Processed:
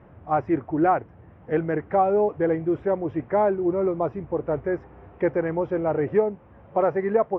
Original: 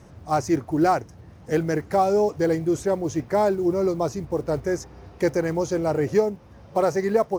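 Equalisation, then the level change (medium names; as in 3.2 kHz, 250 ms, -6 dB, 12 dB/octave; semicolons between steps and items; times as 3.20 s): Savitzky-Golay filter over 25 samples; distance through air 480 m; bass shelf 300 Hz -7.5 dB; +3.0 dB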